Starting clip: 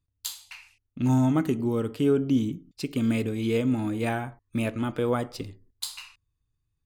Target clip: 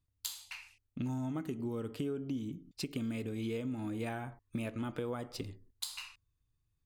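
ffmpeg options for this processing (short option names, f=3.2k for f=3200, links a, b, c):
-af "acompressor=threshold=-33dB:ratio=6,volume=-2dB"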